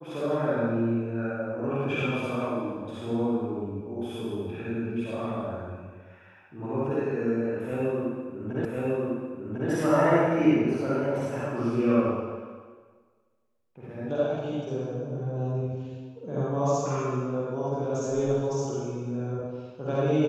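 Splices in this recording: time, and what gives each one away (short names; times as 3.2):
8.65 repeat of the last 1.05 s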